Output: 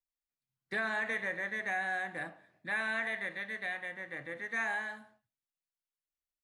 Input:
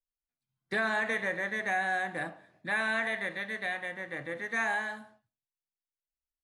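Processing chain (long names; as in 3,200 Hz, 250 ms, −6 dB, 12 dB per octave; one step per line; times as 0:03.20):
parametric band 2,000 Hz +3.5 dB 0.93 octaves
level −6 dB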